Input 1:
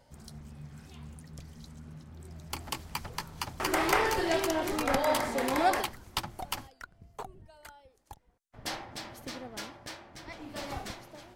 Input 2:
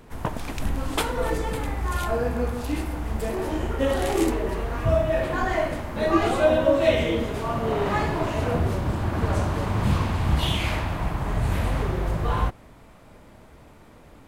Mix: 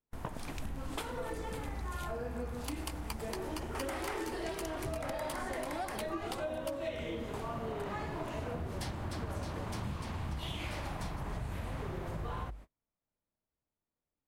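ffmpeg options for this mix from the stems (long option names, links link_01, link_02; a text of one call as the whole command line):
ffmpeg -i stem1.wav -i stem2.wav -filter_complex "[0:a]equalizer=frequency=9500:width_type=o:width=0.3:gain=7,asoftclip=type=tanh:threshold=-16.5dB,adelay=150,volume=-3dB[link_01];[1:a]volume=-8.5dB[link_02];[link_01][link_02]amix=inputs=2:normalize=0,bandreject=frequency=50:width_type=h:width=6,bandreject=frequency=100:width_type=h:width=6,agate=range=-36dB:threshold=-46dB:ratio=16:detection=peak,acompressor=threshold=-35dB:ratio=6" out.wav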